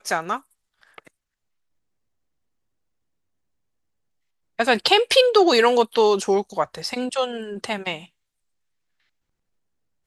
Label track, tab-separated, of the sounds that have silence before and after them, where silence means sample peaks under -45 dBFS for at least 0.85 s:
4.590000	8.060000	sound